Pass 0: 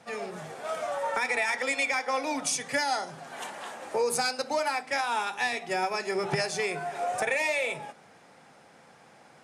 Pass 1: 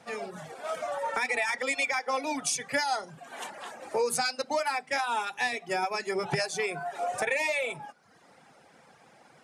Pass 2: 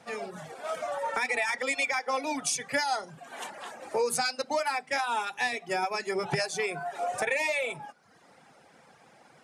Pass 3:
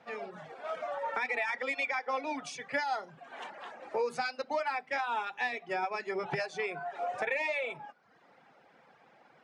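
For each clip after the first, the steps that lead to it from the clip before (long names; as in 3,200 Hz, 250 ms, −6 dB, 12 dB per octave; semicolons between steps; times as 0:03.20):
reverb reduction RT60 0.78 s
no processing that can be heard
low-pass filter 3,200 Hz 12 dB per octave; low-shelf EQ 160 Hz −9 dB; level −3 dB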